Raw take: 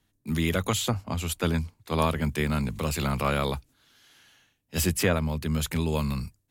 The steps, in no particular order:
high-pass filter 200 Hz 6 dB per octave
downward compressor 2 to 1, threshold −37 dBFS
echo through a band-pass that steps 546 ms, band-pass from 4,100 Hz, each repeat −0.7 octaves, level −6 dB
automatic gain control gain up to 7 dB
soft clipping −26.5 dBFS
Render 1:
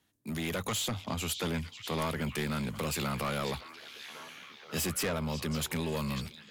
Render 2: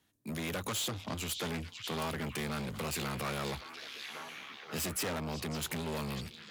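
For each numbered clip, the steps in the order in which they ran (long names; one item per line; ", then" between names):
high-pass filter, then soft clipping, then automatic gain control, then downward compressor, then echo through a band-pass that steps
automatic gain control, then soft clipping, then echo through a band-pass that steps, then downward compressor, then high-pass filter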